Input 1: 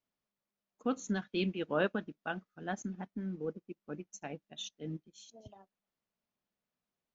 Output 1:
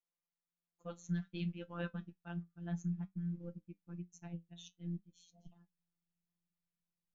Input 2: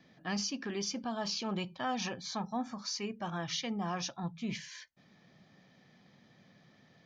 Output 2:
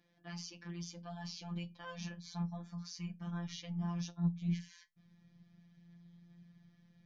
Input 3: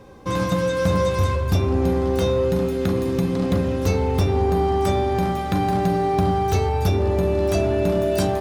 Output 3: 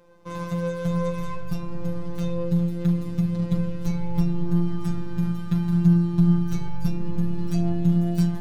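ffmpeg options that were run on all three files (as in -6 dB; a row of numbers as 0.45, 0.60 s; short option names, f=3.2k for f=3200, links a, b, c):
-af "afftfilt=real='hypot(re,im)*cos(PI*b)':imag='0':win_size=1024:overlap=0.75,flanger=delay=9.5:depth=2.4:regen=61:speed=0.57:shape=sinusoidal,asubboost=boost=11:cutoff=150,volume=-3.5dB"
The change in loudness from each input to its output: -5.5, -5.0, -4.0 LU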